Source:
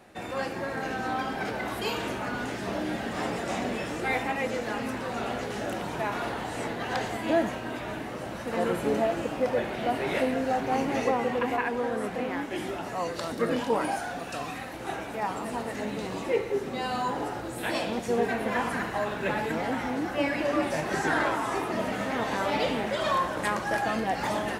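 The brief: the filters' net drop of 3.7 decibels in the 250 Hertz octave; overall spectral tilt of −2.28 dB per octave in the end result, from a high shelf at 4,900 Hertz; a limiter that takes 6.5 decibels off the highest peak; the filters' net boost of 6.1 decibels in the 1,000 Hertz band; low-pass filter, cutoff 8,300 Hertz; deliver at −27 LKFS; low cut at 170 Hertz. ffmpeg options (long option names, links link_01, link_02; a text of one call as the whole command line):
ffmpeg -i in.wav -af "highpass=170,lowpass=8300,equalizer=frequency=250:width_type=o:gain=-4,equalizer=frequency=1000:width_type=o:gain=8.5,highshelf=frequency=4900:gain=-6.5,volume=1dB,alimiter=limit=-15dB:level=0:latency=1" out.wav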